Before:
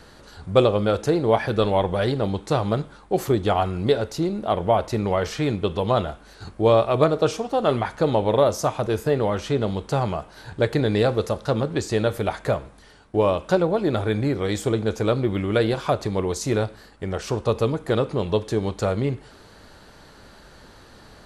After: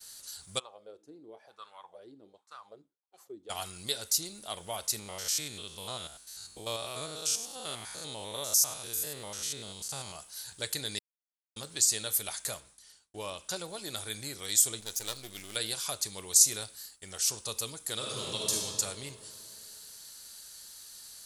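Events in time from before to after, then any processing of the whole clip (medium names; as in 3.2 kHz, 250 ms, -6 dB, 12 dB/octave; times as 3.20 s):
0.58–3.49 s: wah-wah 0.61 Hz -> 2.2 Hz 280–1300 Hz, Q 4.9
4.99–10.16 s: spectrogram pixelated in time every 100 ms
10.99–11.56 s: mute
12.60–13.56 s: treble shelf 4.9 kHz -8 dB
14.80–15.56 s: partial rectifier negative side -12 dB
17.95–18.52 s: reverb throw, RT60 2.7 s, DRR -4.5 dB
whole clip: pre-emphasis filter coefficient 0.97; expander -59 dBFS; tone controls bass +7 dB, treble +15 dB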